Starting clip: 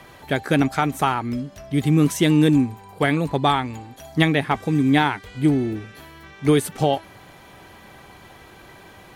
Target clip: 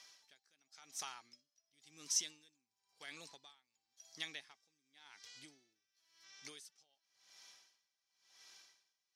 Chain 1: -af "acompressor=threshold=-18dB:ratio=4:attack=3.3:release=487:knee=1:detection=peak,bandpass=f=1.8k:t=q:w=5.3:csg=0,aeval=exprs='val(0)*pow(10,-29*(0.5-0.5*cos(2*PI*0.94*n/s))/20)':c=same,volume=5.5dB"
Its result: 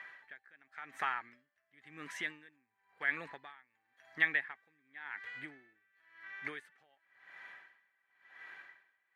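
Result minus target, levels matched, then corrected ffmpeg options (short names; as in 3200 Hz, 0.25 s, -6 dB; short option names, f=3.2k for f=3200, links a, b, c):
2000 Hz band +13.0 dB
-af "acompressor=threshold=-18dB:ratio=4:attack=3.3:release=487:knee=1:detection=peak,bandpass=f=5.5k:t=q:w=5.3:csg=0,aeval=exprs='val(0)*pow(10,-29*(0.5-0.5*cos(2*PI*0.94*n/s))/20)':c=same,volume=5.5dB"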